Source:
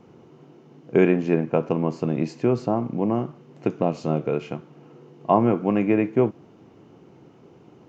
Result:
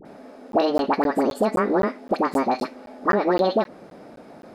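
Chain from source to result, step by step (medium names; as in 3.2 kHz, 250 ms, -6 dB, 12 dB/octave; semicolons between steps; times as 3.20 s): bass shelf 100 Hz +10 dB; compression 10:1, threshold -19 dBFS, peak gain reduction 9 dB; phase dispersion highs, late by 92 ms, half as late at 650 Hz; speed mistake 45 rpm record played at 78 rpm; crackling interface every 0.26 s, samples 512, zero, from 0.52 s; trim +4.5 dB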